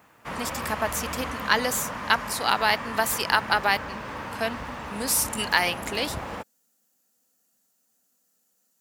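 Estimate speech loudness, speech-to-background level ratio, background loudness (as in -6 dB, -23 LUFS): -25.5 LUFS, 8.5 dB, -34.0 LUFS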